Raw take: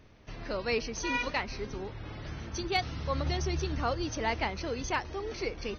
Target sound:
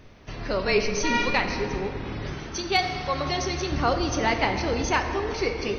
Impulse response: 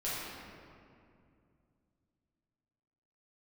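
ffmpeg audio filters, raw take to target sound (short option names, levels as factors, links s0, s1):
-filter_complex "[0:a]asettb=1/sr,asplit=3[s0][s1][s2];[s0]atrim=end=0.674[s3];[s1]atrim=start=0.67:end=1.5,asetpts=PTS-STARTPTS,afade=t=in:d=0.004:c=qsin,afade=t=out:st=0.826:d=0.004:c=qsin,afreqshift=-28[s4];[s2]atrim=start=1.496[s5];[s3][s4]acrossfade=d=0.004:c1=hsin:c2=qsin[s6];[s6][s5]acrossfade=d=0.004:c1=qsin:c2=hsin,asettb=1/sr,asplit=3[s7][s8][s9];[s7]atrim=end=2.344[s10];[s8]atrim=start=2.34:end=3.72,asetpts=PTS-STARTPTS,afade=t=in:d=0.004:c=qsin,afade=t=out:st=1.376:d=0.004:c=qsin,lowshelf=f=260:g=-10[s11];[s9]atrim=start=3.716[s12];[s10][s11]acrossfade=d=0.004:c1=hsin:c2=qsin[s13];[s13][s12]acrossfade=d=0.004:c1=qsin:c2=hsin,asplit=2[s14][s15];[1:a]atrim=start_sample=2205[s16];[s15][s16]afir=irnorm=-1:irlink=0,volume=0.398[s17];[s14][s17]amix=inputs=2:normalize=0,volume=1.88"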